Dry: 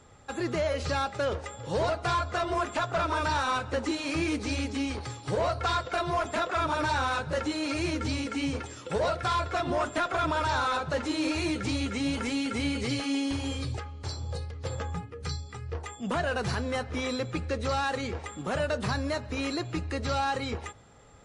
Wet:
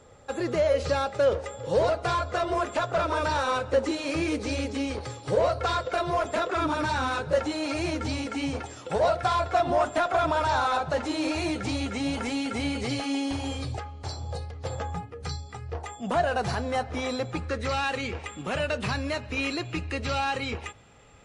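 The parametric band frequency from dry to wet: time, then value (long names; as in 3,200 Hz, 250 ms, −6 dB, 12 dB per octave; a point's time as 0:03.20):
parametric band +9 dB 0.55 octaves
0:06.37 520 Hz
0:06.93 180 Hz
0:07.43 730 Hz
0:17.31 730 Hz
0:17.74 2,600 Hz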